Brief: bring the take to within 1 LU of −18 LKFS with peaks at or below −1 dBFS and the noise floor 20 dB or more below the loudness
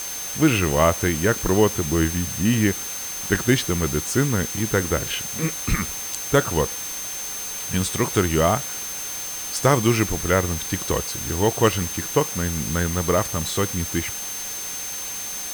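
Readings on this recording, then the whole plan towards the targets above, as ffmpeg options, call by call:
interfering tone 6,300 Hz; level of the tone −31 dBFS; background noise floor −31 dBFS; target noise floor −43 dBFS; integrated loudness −22.5 LKFS; sample peak −4.0 dBFS; target loudness −18.0 LKFS
→ -af "bandreject=frequency=6300:width=30"
-af "afftdn=noise_reduction=12:noise_floor=-31"
-af "volume=4.5dB,alimiter=limit=-1dB:level=0:latency=1"

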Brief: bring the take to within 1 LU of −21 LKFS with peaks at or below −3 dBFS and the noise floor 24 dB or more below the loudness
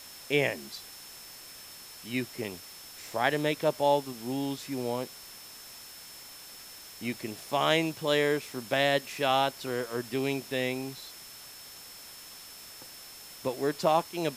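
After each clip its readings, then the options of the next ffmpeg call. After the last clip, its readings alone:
interfering tone 5,300 Hz; level of the tone −50 dBFS; background noise floor −48 dBFS; target noise floor −54 dBFS; integrated loudness −30.0 LKFS; sample peak −9.5 dBFS; target loudness −21.0 LKFS
→ -af "bandreject=frequency=5300:width=30"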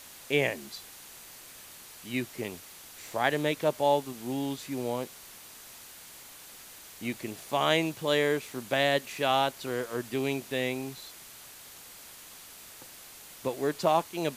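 interfering tone none found; background noise floor −49 dBFS; target noise floor −54 dBFS
→ -af "afftdn=noise_reduction=6:noise_floor=-49"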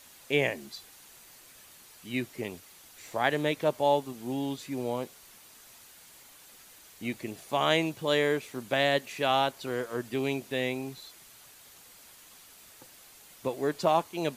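background noise floor −54 dBFS; integrated loudness −30.0 LKFS; sample peak −9.5 dBFS; target loudness −21.0 LKFS
→ -af "volume=9dB,alimiter=limit=-3dB:level=0:latency=1"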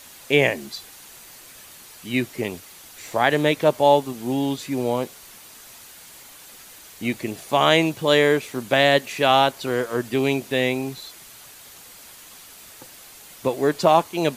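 integrated loudness −21.0 LKFS; sample peak −3.0 dBFS; background noise floor −45 dBFS

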